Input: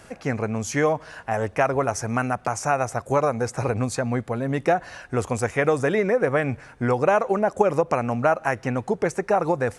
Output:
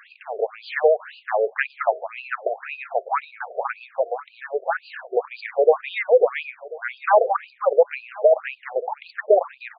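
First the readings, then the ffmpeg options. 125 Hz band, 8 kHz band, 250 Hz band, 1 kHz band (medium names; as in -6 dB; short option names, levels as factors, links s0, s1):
under -40 dB, under -40 dB, under -20 dB, -0.5 dB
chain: -filter_complex "[0:a]asplit=2[s0][s1];[s1]aecho=0:1:1039|2078:0.1|0.024[s2];[s0][s2]amix=inputs=2:normalize=0,afftfilt=real='re*between(b*sr/1024,490*pow(3500/490,0.5+0.5*sin(2*PI*1.9*pts/sr))/1.41,490*pow(3500/490,0.5+0.5*sin(2*PI*1.9*pts/sr))*1.41)':imag='im*between(b*sr/1024,490*pow(3500/490,0.5+0.5*sin(2*PI*1.9*pts/sr))/1.41,490*pow(3500/490,0.5+0.5*sin(2*PI*1.9*pts/sr))*1.41)':win_size=1024:overlap=0.75,volume=2.24"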